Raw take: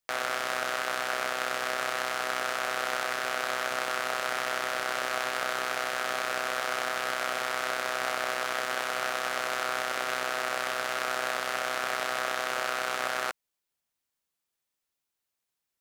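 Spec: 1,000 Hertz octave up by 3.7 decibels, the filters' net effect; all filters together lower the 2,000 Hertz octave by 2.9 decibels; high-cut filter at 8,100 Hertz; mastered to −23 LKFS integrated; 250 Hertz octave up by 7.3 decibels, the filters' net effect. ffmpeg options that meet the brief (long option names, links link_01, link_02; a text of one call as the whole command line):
ffmpeg -i in.wav -af "lowpass=8100,equalizer=frequency=250:width_type=o:gain=8.5,equalizer=frequency=1000:width_type=o:gain=7.5,equalizer=frequency=2000:width_type=o:gain=-7.5,volume=6dB" out.wav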